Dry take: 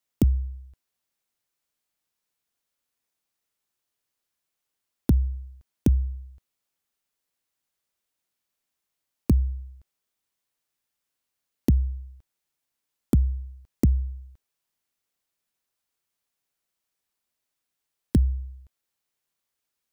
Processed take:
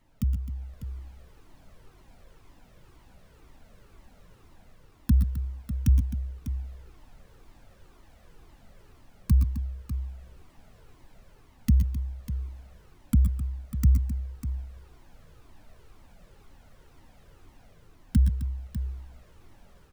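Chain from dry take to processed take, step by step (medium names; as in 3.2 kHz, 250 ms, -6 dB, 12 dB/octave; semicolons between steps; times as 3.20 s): elliptic band-stop 240–1100 Hz; in parallel at +0.5 dB: peak limiter -19.5 dBFS, peak gain reduction 8.5 dB; on the sum: peaking EQ 75 Hz +5.5 dB 2.5 oct; added noise brown -46 dBFS; bass shelf 140 Hz -9.5 dB; level rider gain up to 9 dB; multi-tap echo 116/127/261/598 ms -11.5/-11/-13/-11.5 dB; Shepard-style flanger falling 2 Hz; trim -6 dB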